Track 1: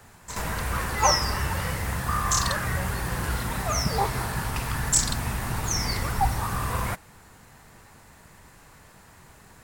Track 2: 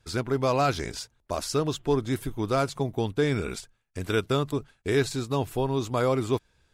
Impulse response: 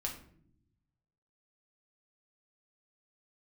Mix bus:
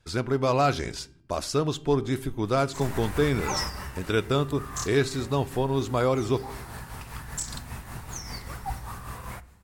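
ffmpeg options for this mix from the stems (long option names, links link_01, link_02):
-filter_complex "[0:a]tremolo=f=5.1:d=0.53,adelay=2450,afade=type=out:start_time=3.33:duration=0.47:silence=0.316228,asplit=2[link_01][link_02];[link_02]volume=-11dB[link_03];[1:a]highshelf=frequency=11000:gain=-6.5,bandreject=frequency=395.6:width_type=h:width=4,bandreject=frequency=791.2:width_type=h:width=4,bandreject=frequency=1186.8:width_type=h:width=4,bandreject=frequency=1582.4:width_type=h:width=4,bandreject=frequency=1978:width_type=h:width=4,bandreject=frequency=2373.6:width_type=h:width=4,bandreject=frequency=2769.2:width_type=h:width=4,bandreject=frequency=3164.8:width_type=h:width=4,volume=-0.5dB,asplit=3[link_04][link_05][link_06];[link_05]volume=-13.5dB[link_07];[link_06]apad=whole_len=533087[link_08];[link_01][link_08]sidechaincompress=threshold=-37dB:ratio=8:attack=16:release=115[link_09];[2:a]atrim=start_sample=2205[link_10];[link_03][link_07]amix=inputs=2:normalize=0[link_11];[link_11][link_10]afir=irnorm=-1:irlink=0[link_12];[link_09][link_04][link_12]amix=inputs=3:normalize=0"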